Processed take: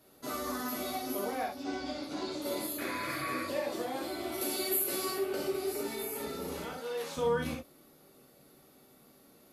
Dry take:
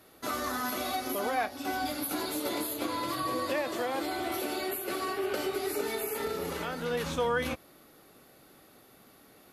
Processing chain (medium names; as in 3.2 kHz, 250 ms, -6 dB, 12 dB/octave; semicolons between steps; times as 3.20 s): 1.56–2.42 s: low-pass 6.4 kHz 24 dB/octave; 4.41–5.18 s: treble shelf 4.1 kHz +11.5 dB; 6.72–7.17 s: high-pass 450 Hz 12 dB/octave; peaking EQ 1.8 kHz -6 dB 2.1 oct; 2.78–3.43 s: painted sound noise 1.1–2.6 kHz -39 dBFS; gated-style reverb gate 90 ms flat, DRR -1 dB; trim -5 dB